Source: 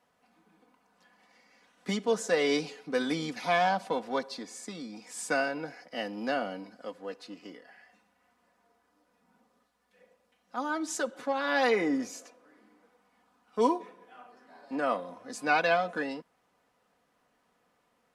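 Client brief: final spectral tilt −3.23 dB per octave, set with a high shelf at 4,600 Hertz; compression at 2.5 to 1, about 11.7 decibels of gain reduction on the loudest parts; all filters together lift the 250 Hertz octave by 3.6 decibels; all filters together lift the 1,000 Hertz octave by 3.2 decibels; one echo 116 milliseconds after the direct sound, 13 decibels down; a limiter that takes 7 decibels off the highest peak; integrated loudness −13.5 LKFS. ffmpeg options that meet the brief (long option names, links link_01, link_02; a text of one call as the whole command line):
ffmpeg -i in.wav -af "equalizer=frequency=250:width_type=o:gain=4,equalizer=frequency=1000:width_type=o:gain=4,highshelf=frequency=4600:gain=5.5,acompressor=threshold=-36dB:ratio=2.5,alimiter=level_in=3.5dB:limit=-24dB:level=0:latency=1,volume=-3.5dB,aecho=1:1:116:0.224,volume=25.5dB" out.wav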